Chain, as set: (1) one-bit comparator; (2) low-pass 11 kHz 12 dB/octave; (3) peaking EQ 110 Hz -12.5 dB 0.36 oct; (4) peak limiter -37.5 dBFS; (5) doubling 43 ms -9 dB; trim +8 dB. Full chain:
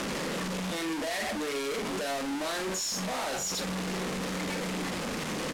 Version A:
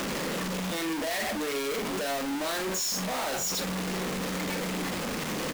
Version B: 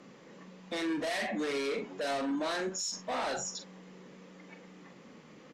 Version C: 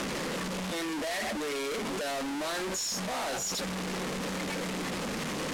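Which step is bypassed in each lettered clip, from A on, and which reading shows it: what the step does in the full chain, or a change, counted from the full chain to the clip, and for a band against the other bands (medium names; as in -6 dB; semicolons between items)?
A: 2, crest factor change -1.5 dB; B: 1, crest factor change +4.0 dB; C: 5, crest factor change -2.0 dB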